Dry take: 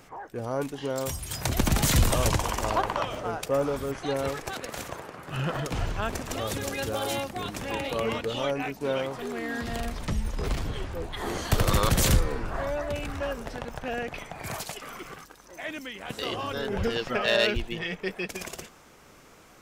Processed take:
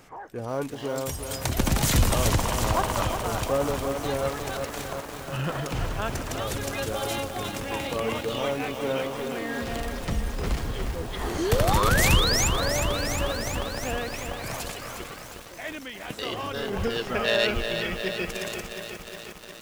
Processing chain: painted sound rise, 11.38–12.48, 300–7600 Hz -26 dBFS; lo-fi delay 0.358 s, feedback 80%, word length 7-bit, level -7 dB

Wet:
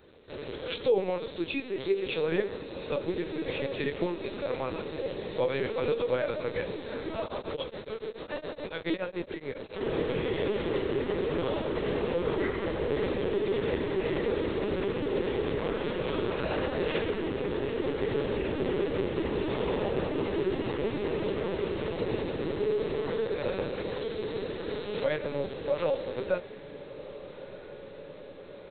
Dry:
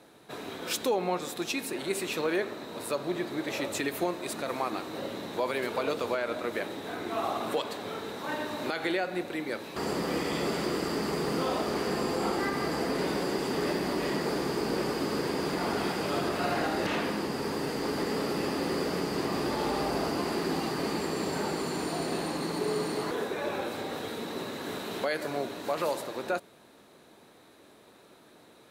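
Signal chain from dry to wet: resonant low shelf 690 Hz +9 dB, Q 1.5; doubler 18 ms -5 dB; LPC vocoder at 8 kHz pitch kept; tilt +3 dB/oct; notch 710 Hz, Q 12; diffused feedback echo 1.362 s, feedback 69%, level -15 dB; 7.22–9.81 beating tremolo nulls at 7.1 Hz; gain -4.5 dB

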